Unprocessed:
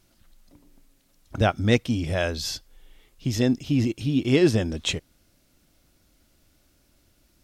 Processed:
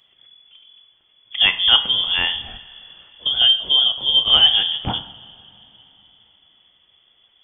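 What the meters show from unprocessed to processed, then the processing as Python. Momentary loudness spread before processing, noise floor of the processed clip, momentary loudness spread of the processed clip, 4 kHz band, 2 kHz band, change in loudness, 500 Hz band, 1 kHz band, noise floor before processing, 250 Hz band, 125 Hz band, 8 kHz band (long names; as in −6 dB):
12 LU, −59 dBFS, 15 LU, +21.0 dB, +6.5 dB, +9.5 dB, −13.0 dB, +3.5 dB, −64 dBFS, −16.5 dB, −12.5 dB, below −40 dB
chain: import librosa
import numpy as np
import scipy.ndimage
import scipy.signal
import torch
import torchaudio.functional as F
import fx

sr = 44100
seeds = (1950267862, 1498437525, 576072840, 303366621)

y = fx.freq_invert(x, sr, carrier_hz=3400)
y = fx.rev_double_slope(y, sr, seeds[0], early_s=0.54, late_s=3.8, knee_db=-19, drr_db=8.5)
y = y * 10.0 ** (4.0 / 20.0)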